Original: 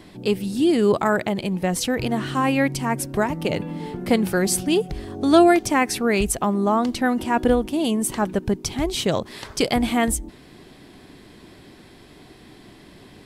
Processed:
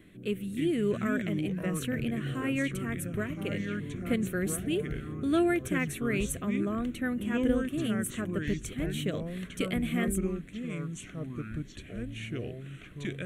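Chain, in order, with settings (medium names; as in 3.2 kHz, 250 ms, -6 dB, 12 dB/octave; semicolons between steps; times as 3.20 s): ever faster or slower copies 228 ms, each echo -5 st, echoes 2, each echo -6 dB; static phaser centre 2.1 kHz, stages 4; trim -8.5 dB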